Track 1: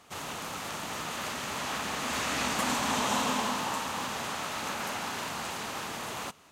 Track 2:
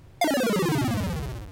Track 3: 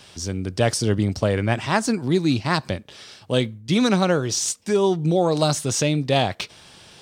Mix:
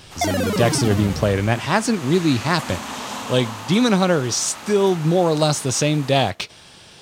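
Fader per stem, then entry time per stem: -1.5, +1.5, +2.0 dB; 0.00, 0.00, 0.00 s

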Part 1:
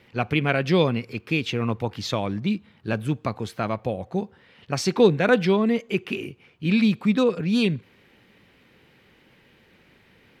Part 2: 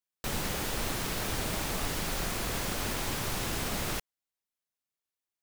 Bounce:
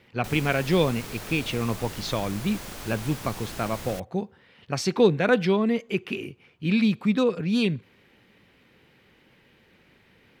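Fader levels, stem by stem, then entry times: -2.0, -5.5 dB; 0.00, 0.00 s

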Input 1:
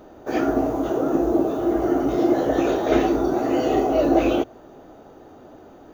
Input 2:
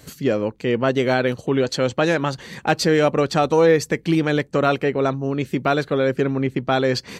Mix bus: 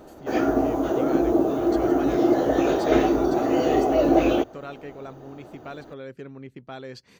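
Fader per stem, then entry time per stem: -0.5, -19.0 dB; 0.00, 0.00 s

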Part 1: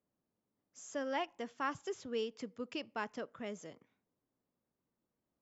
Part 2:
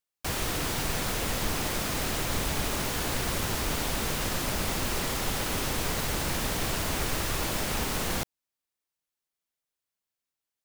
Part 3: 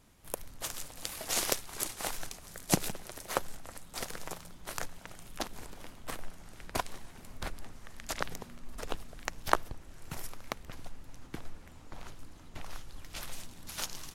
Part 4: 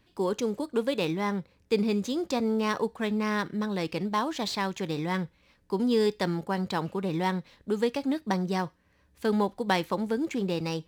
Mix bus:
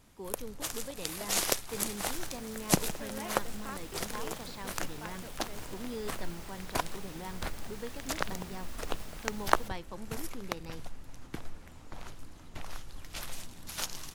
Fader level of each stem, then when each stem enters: -7.5, -19.0, +1.5, -15.5 dB; 2.05, 1.45, 0.00, 0.00 s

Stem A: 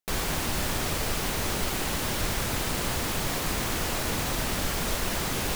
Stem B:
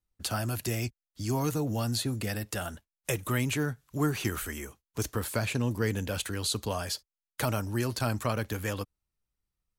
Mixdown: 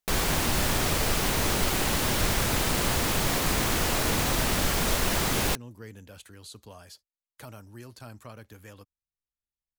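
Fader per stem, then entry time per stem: +3.0, -15.0 dB; 0.00, 0.00 s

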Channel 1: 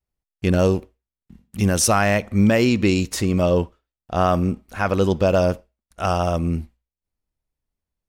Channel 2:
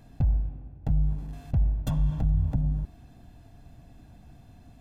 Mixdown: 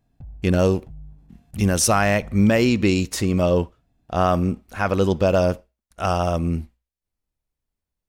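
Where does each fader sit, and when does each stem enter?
-0.5, -16.0 dB; 0.00, 0.00 s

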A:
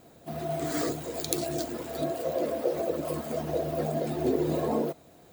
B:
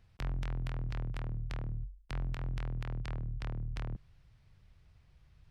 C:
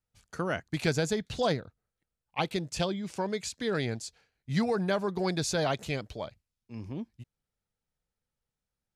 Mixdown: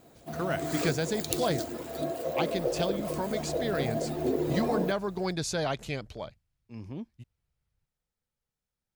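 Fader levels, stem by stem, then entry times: -2.0, -19.0, -1.5 dB; 0.00, 2.35, 0.00 s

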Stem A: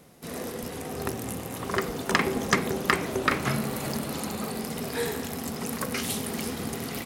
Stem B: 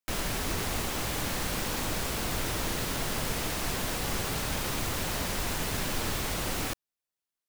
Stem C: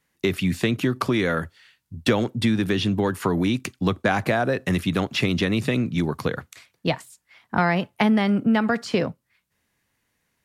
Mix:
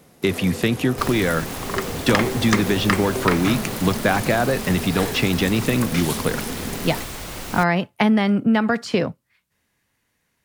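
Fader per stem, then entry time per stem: +2.0, -1.0, +2.0 dB; 0.00, 0.90, 0.00 s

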